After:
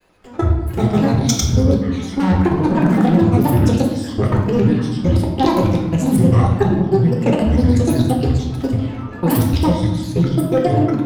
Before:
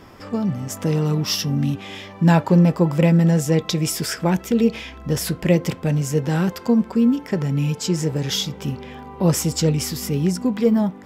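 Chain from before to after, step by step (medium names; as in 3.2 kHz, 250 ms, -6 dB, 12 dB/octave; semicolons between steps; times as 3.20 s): drifting ripple filter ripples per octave 1.4, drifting +0.36 Hz, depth 9 dB; dynamic bell 140 Hz, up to +6 dB, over -36 dBFS, Q 7.8; saturation -9.5 dBFS, distortion -17 dB; granulator, pitch spread up and down by 12 st; level held to a coarse grid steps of 22 dB; reverberation RT60 1.3 s, pre-delay 3 ms, DRR -0.5 dB; loudspeaker Doppler distortion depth 0.13 ms; trim +5.5 dB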